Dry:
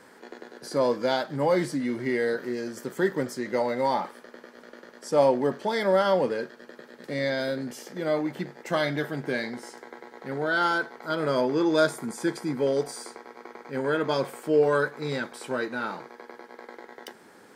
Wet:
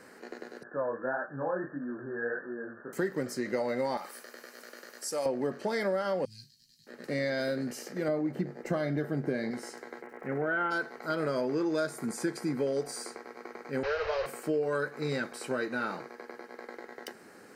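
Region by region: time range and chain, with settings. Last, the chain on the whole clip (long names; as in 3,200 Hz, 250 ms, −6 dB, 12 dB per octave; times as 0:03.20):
0:00.63–0:02.93: linear-phase brick-wall low-pass 1,800 Hz + chorus effect 1.6 Hz, delay 19.5 ms, depth 6.9 ms + tilt shelving filter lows −8 dB
0:03.97–0:05.26: RIAA equalisation recording + downward compressor 1.5 to 1, threshold −43 dBFS
0:06.25–0:06.87: elliptic band-stop filter 120–4,100 Hz, stop band 80 dB + double-tracking delay 19 ms −7 dB
0:08.08–0:09.51: tilt shelving filter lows +6 dB, about 920 Hz + notch filter 2,600 Hz, Q 24
0:10.01–0:10.70: Butterworth low-pass 2,800 Hz 48 dB per octave + surface crackle 340 per second −55 dBFS
0:13.83–0:14.26: linear delta modulator 32 kbit/s, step −22.5 dBFS + elliptic band-stop filter 100–460 Hz + high-frequency loss of the air 240 metres
whole clip: parametric band 930 Hz −7.5 dB 0.24 octaves; notch filter 3,400 Hz, Q 5.6; downward compressor 6 to 1, threshold −27 dBFS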